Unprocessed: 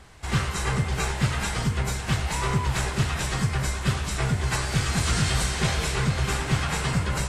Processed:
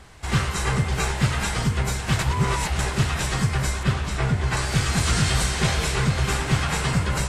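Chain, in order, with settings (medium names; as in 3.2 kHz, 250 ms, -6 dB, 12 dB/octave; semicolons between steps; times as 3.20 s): 2.19–2.79 s: reverse; 3.83–4.57 s: treble shelf 5.3 kHz -10 dB; trim +2.5 dB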